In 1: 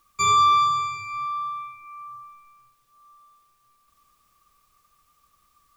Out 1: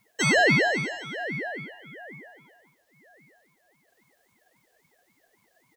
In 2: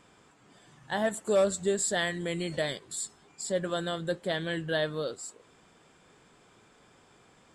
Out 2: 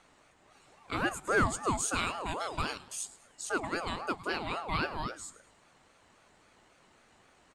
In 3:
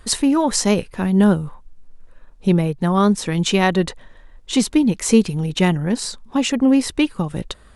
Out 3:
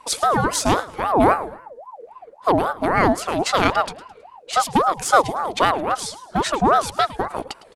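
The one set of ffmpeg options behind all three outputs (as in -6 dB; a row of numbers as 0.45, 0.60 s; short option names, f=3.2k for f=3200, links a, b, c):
-filter_complex "[0:a]asplit=4[a][b][c][d];[b]adelay=107,afreqshift=100,volume=-17.5dB[e];[c]adelay=214,afreqshift=200,volume=-26.1dB[f];[d]adelay=321,afreqshift=300,volume=-34.8dB[g];[a][e][f][g]amix=inputs=4:normalize=0,aeval=exprs='0.891*(cos(1*acos(clip(val(0)/0.891,-1,1)))-cos(1*PI/2))+0.0251*(cos(4*acos(clip(val(0)/0.891,-1,1)))-cos(4*PI/2))+0.0158*(cos(7*acos(clip(val(0)/0.891,-1,1)))-cos(7*PI/2))+0.00631*(cos(8*acos(clip(val(0)/0.891,-1,1)))-cos(8*PI/2))':c=same,aeval=exprs='val(0)*sin(2*PI*740*n/s+740*0.4/3.7*sin(2*PI*3.7*n/s))':c=same,volume=1dB"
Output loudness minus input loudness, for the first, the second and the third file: -2.5, -2.5, -1.5 LU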